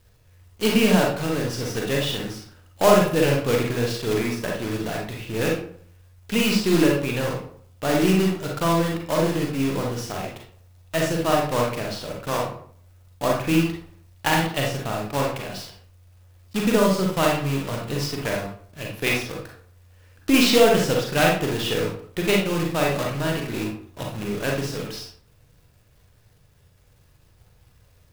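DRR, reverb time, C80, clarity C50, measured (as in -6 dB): -1.0 dB, 0.55 s, 8.5 dB, 2.5 dB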